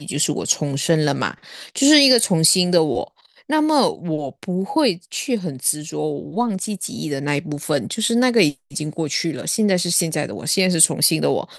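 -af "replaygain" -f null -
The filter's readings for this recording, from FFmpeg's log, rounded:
track_gain = -0.4 dB
track_peak = 0.582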